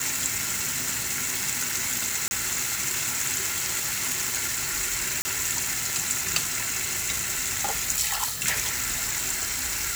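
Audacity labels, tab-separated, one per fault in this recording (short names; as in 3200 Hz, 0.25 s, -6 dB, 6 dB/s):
2.280000	2.310000	gap 30 ms
5.220000	5.250000	gap 30 ms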